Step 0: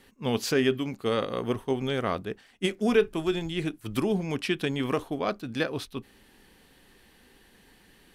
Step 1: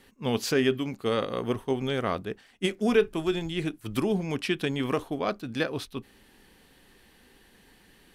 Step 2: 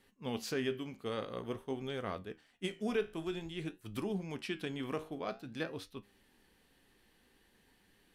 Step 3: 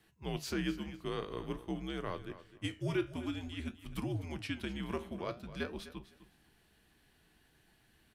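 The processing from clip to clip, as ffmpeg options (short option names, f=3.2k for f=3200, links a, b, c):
-af anull
-af "flanger=delay=9.8:depth=9.4:regen=71:speed=0.5:shape=sinusoidal,volume=-6.5dB"
-af "afreqshift=-77,aecho=1:1:254|508:0.178|0.0356"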